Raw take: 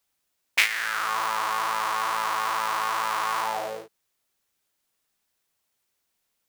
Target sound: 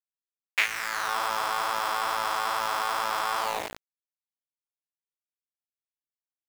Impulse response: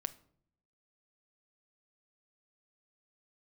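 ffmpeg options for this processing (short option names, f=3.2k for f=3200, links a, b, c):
-af "highpass=430,aemphasis=mode=reproduction:type=riaa,aeval=exprs='val(0)*gte(abs(val(0)),0.0501)':c=same"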